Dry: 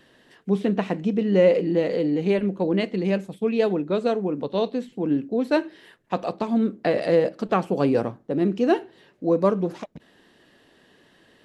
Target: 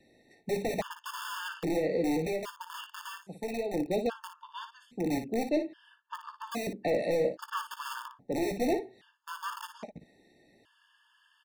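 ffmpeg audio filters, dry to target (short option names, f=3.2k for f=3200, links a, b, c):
-filter_complex "[0:a]asettb=1/sr,asplit=3[a][b][c];[a]atrim=end=5.354[d];[b]atrim=start=5.35:end=6.44,asetpts=PTS-STARTPTS,afade=t=in:d=0.004:c=qsin,afade=t=out:st=1.086:d=0.004:c=qsin,lowpass=f=3k:p=1[e];[c]atrim=start=6.436[f];[d][e]acrossfade=d=0.004:c1=hsin:c2=qsin[g];[g][f]acrossfade=d=0.004:c1=qsin:c2=hsin,acrossover=split=290|1200[h][i][j];[h]aeval=exprs='(mod(16.8*val(0)+1,2)-1)/16.8':c=same[k];[k][i][j]amix=inputs=3:normalize=0,asettb=1/sr,asplit=3[l][m][n];[l]atrim=end=2.264[o];[m]atrim=start=2.26:end=3.74,asetpts=PTS-STARTPTS,afade=t=in:d=0.004:c=qsin,afade=t=out:st=1.476:d=0.004:c=qsin,acrossover=split=91|400[p][q][r];[p]acompressor=threshold=-44dB:ratio=4[s];[q]acompressor=threshold=-37dB:ratio=4[t];[r]acompressor=threshold=-27dB:ratio=4[u];[s][t][u]amix=inputs=3:normalize=0[v];[n]atrim=start=3.736[w];[o][v]acrossfade=d=0.004:c1=hsin:c2=qsin[x];[x][w]acrossfade=d=0.004:c1=qsin:c2=hsin,volume=17.5dB,asoftclip=hard,volume=-17.5dB,aecho=1:1:17|57:0.251|0.335,afftfilt=real='re*gt(sin(2*PI*0.61*pts/sr)*(1-2*mod(floor(b*sr/1024/900),2)),0)':imag='im*gt(sin(2*PI*0.61*pts/sr)*(1-2*mod(floor(b*sr/1024/900),2)),0)':win_size=1024:overlap=0.75,volume=-5.5dB"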